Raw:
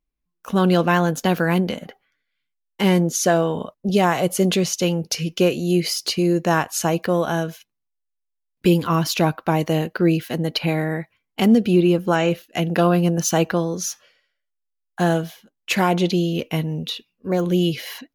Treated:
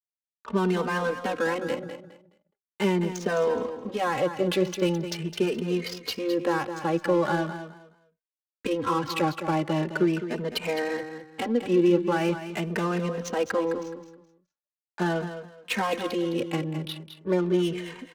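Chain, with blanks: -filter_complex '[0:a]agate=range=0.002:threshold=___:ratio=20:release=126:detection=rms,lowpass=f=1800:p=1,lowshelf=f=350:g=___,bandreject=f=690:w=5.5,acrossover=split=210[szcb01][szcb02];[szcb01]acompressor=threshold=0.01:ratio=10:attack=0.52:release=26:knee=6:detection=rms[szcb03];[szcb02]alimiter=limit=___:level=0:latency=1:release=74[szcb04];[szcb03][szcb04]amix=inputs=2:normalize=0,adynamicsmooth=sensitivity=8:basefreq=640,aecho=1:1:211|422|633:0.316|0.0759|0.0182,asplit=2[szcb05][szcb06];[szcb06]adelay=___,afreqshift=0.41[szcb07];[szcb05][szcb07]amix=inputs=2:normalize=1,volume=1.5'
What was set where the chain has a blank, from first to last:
0.00794, -5, 0.158, 3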